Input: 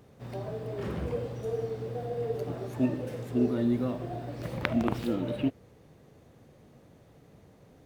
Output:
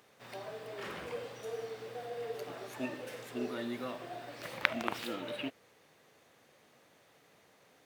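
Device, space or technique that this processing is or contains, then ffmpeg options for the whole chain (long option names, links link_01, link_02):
filter by subtraction: -filter_complex "[0:a]asplit=2[link_01][link_02];[link_02]lowpass=2000,volume=-1[link_03];[link_01][link_03]amix=inputs=2:normalize=0,volume=2dB"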